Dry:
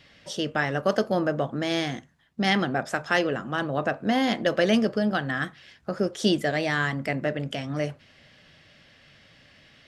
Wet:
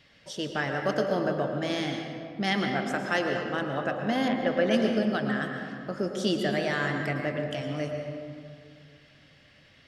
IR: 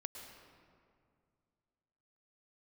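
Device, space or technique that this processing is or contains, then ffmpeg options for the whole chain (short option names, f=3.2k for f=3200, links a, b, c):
stairwell: -filter_complex "[1:a]atrim=start_sample=2205[a];[0:a][a]afir=irnorm=-1:irlink=0,asettb=1/sr,asplit=3[b][c][d];[b]atrim=end=4.284[e];[c]atrim=start=4.28:end=4.71,asetpts=PTS-STARTPTS,afade=t=in:d=0.004:c=qsin,afade=t=out:st=0.426:d=0.004:c=qsin,acrossover=split=2900[f][g];[g]acompressor=threshold=-54dB:ratio=4:attack=1:release=60[h];[f][h]amix=inputs=2:normalize=0[i];[d]atrim=start=4.706[j];[e][i]acrossfade=d=0.004:c1=hsin:c2=qsin[k];[k][j]acrossfade=d=0.004:c1=qsin:c2=hsin"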